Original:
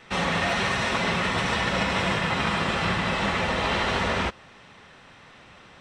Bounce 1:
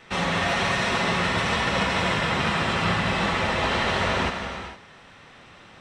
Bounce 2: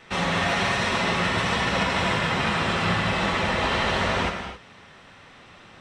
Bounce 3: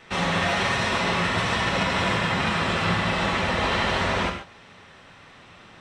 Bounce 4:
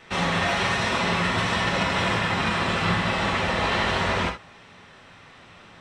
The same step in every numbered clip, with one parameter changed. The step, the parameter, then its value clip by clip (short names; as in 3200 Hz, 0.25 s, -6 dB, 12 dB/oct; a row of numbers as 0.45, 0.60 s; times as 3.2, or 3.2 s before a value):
non-linear reverb, gate: 490, 290, 160, 90 ms